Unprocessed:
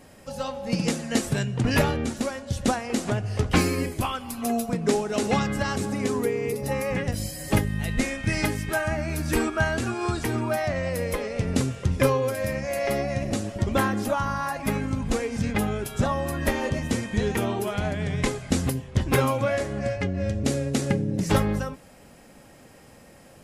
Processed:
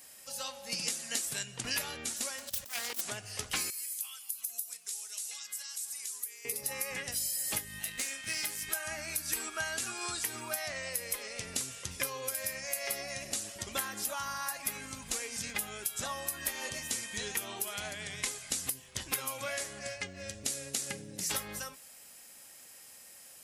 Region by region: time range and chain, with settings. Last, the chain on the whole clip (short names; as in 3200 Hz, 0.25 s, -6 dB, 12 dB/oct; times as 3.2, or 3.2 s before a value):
2.38–3.01 self-modulated delay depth 0.64 ms + negative-ratio compressor -31 dBFS, ratio -0.5
3.7–6.45 differentiator + compressor 4:1, threshold -41 dBFS
7.79–8.62 HPF 110 Hz 6 dB/oct + tube stage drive 20 dB, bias 0.6 + doubler 25 ms -11 dB
whole clip: pre-emphasis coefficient 0.97; compressor 6:1, threshold -37 dBFS; gain +6.5 dB